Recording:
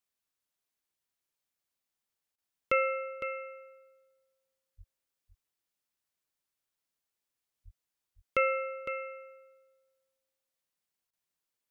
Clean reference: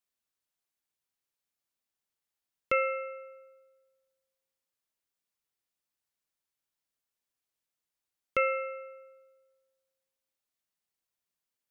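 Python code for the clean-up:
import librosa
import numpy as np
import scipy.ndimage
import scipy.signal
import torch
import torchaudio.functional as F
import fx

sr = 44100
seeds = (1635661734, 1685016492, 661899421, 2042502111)

y = fx.fix_deplosive(x, sr, at_s=(4.77, 7.64))
y = fx.fix_interpolate(y, sr, at_s=(2.36, 11.11), length_ms=20.0)
y = fx.fix_echo_inverse(y, sr, delay_ms=508, level_db=-9.5)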